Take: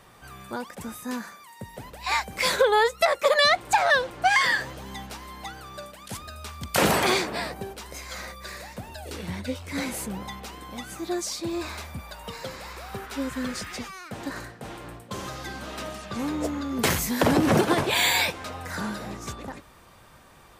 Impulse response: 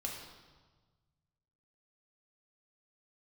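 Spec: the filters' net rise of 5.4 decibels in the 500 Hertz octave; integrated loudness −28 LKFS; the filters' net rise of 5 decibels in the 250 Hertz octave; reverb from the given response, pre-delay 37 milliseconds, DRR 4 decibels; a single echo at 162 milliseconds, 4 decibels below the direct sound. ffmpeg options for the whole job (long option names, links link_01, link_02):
-filter_complex "[0:a]equalizer=frequency=250:width_type=o:gain=4.5,equalizer=frequency=500:width_type=o:gain=5.5,aecho=1:1:162:0.631,asplit=2[link_01][link_02];[1:a]atrim=start_sample=2205,adelay=37[link_03];[link_02][link_03]afir=irnorm=-1:irlink=0,volume=-4.5dB[link_04];[link_01][link_04]amix=inputs=2:normalize=0,volume=-8dB"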